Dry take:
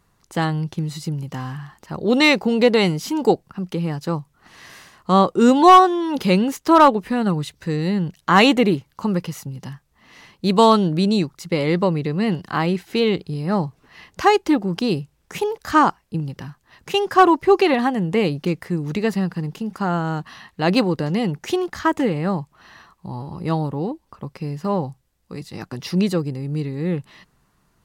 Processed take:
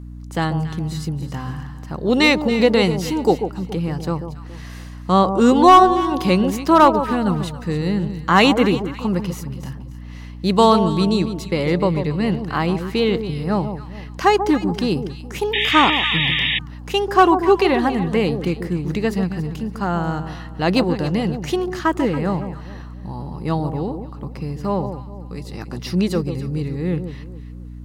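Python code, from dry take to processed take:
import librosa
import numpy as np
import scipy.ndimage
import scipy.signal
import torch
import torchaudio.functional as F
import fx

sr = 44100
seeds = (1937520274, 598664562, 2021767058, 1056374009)

y = fx.echo_alternate(x, sr, ms=140, hz=1000.0, feedback_pct=55, wet_db=-8)
y = fx.add_hum(y, sr, base_hz=60, snr_db=15)
y = fx.spec_paint(y, sr, seeds[0], shape='noise', start_s=15.53, length_s=1.06, low_hz=1700.0, high_hz=3800.0, level_db=-20.0)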